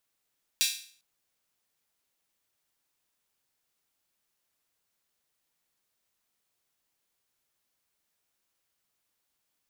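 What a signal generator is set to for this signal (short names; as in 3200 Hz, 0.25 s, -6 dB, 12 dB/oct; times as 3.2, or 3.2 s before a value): open hi-hat length 0.40 s, high-pass 3200 Hz, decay 0.48 s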